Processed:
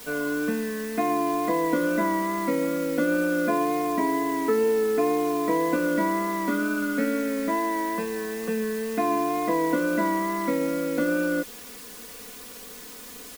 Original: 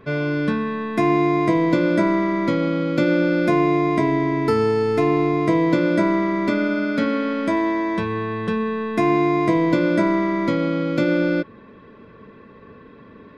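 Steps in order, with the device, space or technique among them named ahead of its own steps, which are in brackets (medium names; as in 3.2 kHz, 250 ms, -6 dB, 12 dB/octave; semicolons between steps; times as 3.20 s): wax cylinder (band-pass 300–2000 Hz; wow and flutter 21 cents; white noise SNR 17 dB); bass shelf 150 Hz +5 dB; comb 4.1 ms, depth 94%; trim -6 dB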